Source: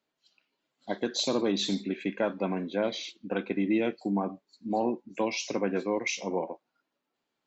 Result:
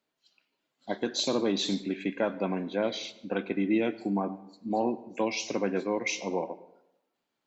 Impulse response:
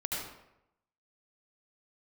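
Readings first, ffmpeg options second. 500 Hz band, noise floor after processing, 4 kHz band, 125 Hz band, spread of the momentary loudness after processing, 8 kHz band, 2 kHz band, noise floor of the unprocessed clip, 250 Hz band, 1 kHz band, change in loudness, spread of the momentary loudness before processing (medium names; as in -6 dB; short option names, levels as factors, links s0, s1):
0.0 dB, -83 dBFS, 0.0 dB, -0.5 dB, 9 LU, no reading, 0.0 dB, -84 dBFS, 0.0 dB, 0.0 dB, 0.0 dB, 9 LU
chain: -filter_complex "[0:a]asplit=2[s0][s1];[1:a]atrim=start_sample=2205,adelay=18[s2];[s1][s2]afir=irnorm=-1:irlink=0,volume=0.0944[s3];[s0][s3]amix=inputs=2:normalize=0"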